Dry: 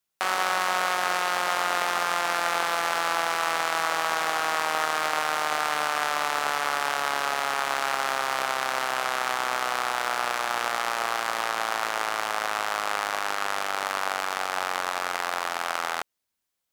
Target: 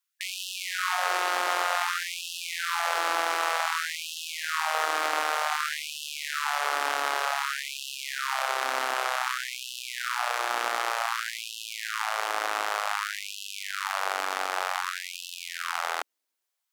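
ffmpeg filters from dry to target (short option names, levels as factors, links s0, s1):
-af "acontrast=20,afftfilt=real='re*gte(b*sr/1024,220*pow(2600/220,0.5+0.5*sin(2*PI*0.54*pts/sr)))':imag='im*gte(b*sr/1024,220*pow(2600/220,0.5+0.5*sin(2*PI*0.54*pts/sr)))':win_size=1024:overlap=0.75,volume=0.531"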